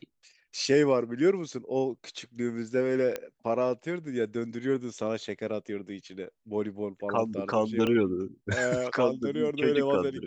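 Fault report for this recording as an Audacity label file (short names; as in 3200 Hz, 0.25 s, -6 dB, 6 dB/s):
3.160000	3.160000	pop -17 dBFS
7.870000	7.870000	pop -17 dBFS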